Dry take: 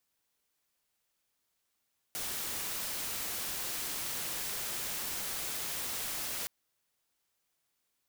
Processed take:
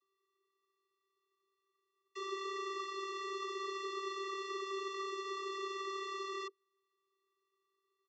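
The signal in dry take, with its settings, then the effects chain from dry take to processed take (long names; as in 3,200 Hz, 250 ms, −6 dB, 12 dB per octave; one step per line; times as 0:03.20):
noise white, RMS −37 dBFS 4.32 s
comb filter 0.9 ms, depth 93%
channel vocoder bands 32, square 389 Hz
high-frequency loss of the air 160 metres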